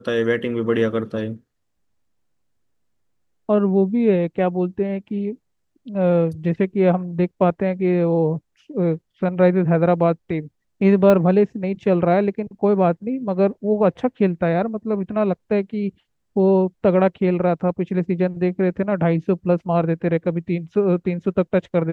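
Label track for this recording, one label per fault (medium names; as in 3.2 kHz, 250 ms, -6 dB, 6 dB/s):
11.100000	11.100000	pop -7 dBFS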